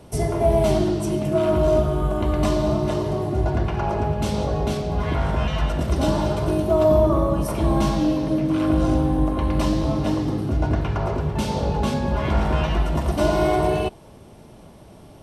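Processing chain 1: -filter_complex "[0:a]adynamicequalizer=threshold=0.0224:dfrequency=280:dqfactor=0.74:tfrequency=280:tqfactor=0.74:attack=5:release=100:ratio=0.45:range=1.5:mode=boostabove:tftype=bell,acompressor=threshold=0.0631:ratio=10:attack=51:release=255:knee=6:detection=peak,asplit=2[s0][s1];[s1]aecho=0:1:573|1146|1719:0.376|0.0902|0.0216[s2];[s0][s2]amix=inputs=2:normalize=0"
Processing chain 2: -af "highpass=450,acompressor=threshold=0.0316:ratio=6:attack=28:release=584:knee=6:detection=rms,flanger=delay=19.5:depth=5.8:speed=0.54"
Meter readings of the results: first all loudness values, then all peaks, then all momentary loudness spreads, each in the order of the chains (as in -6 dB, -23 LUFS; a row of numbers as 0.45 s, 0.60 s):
-26.0 LUFS, -37.0 LUFS; -11.5 dBFS, -23.0 dBFS; 2 LU, 3 LU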